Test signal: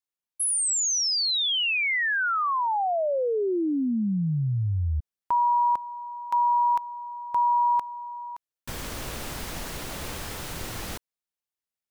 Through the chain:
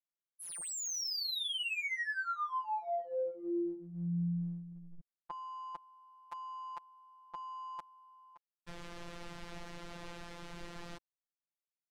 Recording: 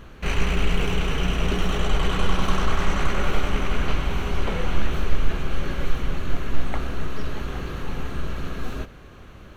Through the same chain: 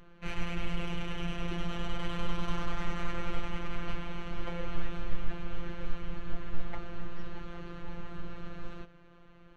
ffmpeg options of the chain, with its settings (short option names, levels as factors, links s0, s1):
-af "adynamicsmooth=sensitivity=3.5:basefreq=4100,afftfilt=real='hypot(re,im)*cos(PI*b)':imag='0':win_size=1024:overlap=0.75,volume=0.422"